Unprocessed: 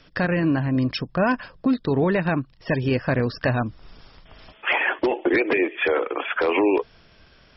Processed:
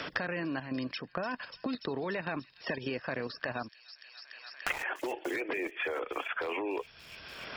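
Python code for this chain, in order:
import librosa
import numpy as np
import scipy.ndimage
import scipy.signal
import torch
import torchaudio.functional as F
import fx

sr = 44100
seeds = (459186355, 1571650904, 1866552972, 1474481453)

p1 = fx.highpass(x, sr, hz=500.0, slope=6)
p2 = fx.level_steps(p1, sr, step_db=10)
p3 = fx.sample_gate(p2, sr, floor_db=-28.5, at=(3.67, 4.82), fade=0.02)
p4 = p3 + fx.echo_wet_highpass(p3, sr, ms=291, feedback_pct=72, hz=5000.0, wet_db=-11.0, dry=0)
p5 = fx.band_squash(p4, sr, depth_pct=100)
y = p5 * 10.0 ** (-4.5 / 20.0)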